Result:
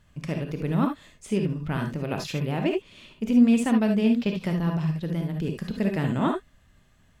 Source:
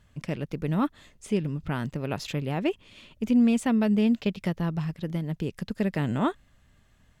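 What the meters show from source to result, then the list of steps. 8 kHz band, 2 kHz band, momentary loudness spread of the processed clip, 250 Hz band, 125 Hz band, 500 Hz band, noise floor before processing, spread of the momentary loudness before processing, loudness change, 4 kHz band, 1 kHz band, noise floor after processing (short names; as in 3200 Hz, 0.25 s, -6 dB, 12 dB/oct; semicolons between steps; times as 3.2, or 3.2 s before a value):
+1.5 dB, +2.0 dB, 11 LU, +2.0 dB, +2.5 dB, +2.0 dB, -62 dBFS, 11 LU, +2.0 dB, +1.5 dB, +1.5 dB, -60 dBFS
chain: non-linear reverb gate 90 ms rising, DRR 3 dB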